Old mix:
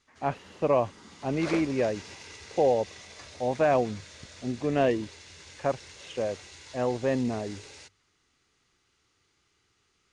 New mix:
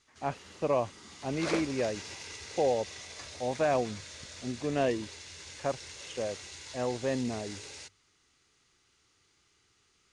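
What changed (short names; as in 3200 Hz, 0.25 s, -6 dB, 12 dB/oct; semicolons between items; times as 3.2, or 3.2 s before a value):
speech -4.5 dB; master: add high shelf 4300 Hz +5.5 dB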